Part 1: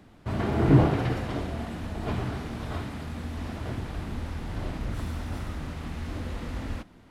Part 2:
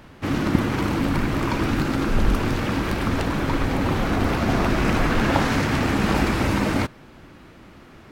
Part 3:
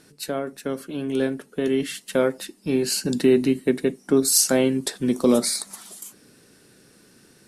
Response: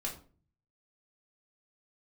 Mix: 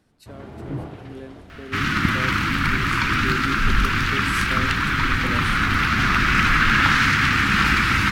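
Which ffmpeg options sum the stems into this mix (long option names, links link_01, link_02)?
-filter_complex "[0:a]volume=-12dB[link_01];[1:a]firequalizer=gain_entry='entry(150,0);entry(600,-18);entry(1300,11);entry(8000,1)':delay=0.05:min_phase=1,adelay=1500,volume=0dB[link_02];[2:a]highshelf=frequency=6300:gain=-7,volume=-15.5dB[link_03];[link_01][link_02][link_03]amix=inputs=3:normalize=0"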